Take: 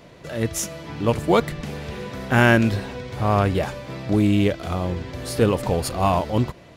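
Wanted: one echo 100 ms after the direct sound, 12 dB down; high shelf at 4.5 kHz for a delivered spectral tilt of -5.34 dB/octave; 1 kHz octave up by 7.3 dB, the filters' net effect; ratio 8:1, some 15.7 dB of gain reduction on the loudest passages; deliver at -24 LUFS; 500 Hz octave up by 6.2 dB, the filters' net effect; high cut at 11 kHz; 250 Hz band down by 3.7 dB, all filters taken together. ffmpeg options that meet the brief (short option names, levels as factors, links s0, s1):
-af "lowpass=11000,equalizer=f=250:t=o:g=-8,equalizer=f=500:t=o:g=7.5,equalizer=f=1000:t=o:g=7.5,highshelf=f=4500:g=-3.5,acompressor=threshold=0.0631:ratio=8,aecho=1:1:100:0.251,volume=1.78"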